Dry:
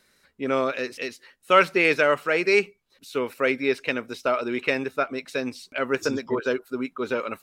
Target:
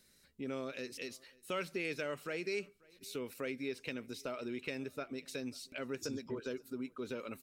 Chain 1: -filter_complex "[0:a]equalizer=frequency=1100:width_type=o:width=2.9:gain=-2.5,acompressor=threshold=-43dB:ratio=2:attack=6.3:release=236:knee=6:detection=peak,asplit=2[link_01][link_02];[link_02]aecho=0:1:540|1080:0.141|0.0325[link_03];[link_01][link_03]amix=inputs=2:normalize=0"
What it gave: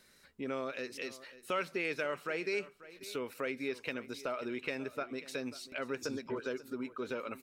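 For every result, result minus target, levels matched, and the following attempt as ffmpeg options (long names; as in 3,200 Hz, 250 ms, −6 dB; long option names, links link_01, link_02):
echo-to-direct +9 dB; 1,000 Hz band +3.5 dB
-filter_complex "[0:a]equalizer=frequency=1100:width_type=o:width=2.9:gain=-2.5,acompressor=threshold=-43dB:ratio=2:attack=6.3:release=236:knee=6:detection=peak,asplit=2[link_01][link_02];[link_02]aecho=0:1:540|1080:0.0501|0.0115[link_03];[link_01][link_03]amix=inputs=2:normalize=0"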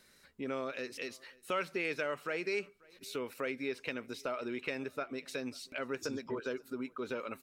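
1,000 Hz band +3.5 dB
-filter_complex "[0:a]equalizer=frequency=1100:width_type=o:width=2.9:gain=-13,acompressor=threshold=-43dB:ratio=2:attack=6.3:release=236:knee=6:detection=peak,asplit=2[link_01][link_02];[link_02]aecho=0:1:540|1080:0.0501|0.0115[link_03];[link_01][link_03]amix=inputs=2:normalize=0"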